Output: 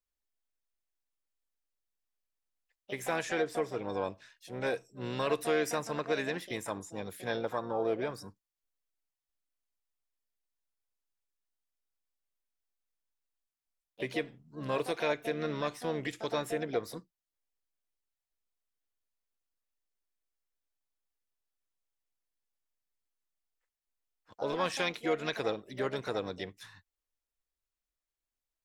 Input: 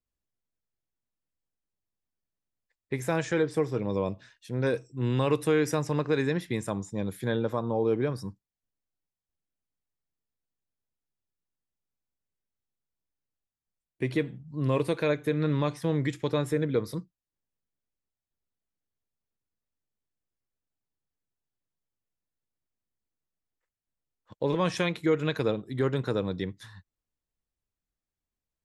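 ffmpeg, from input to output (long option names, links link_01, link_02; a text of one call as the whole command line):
ffmpeg -i in.wav -filter_complex "[0:a]asplit=3[link_01][link_02][link_03];[link_02]asetrate=52444,aresample=44100,atempo=0.840896,volume=-17dB[link_04];[link_03]asetrate=66075,aresample=44100,atempo=0.66742,volume=-11dB[link_05];[link_01][link_04][link_05]amix=inputs=3:normalize=0,equalizer=frequency=140:width=0.55:gain=-13.5,volume=-1.5dB" out.wav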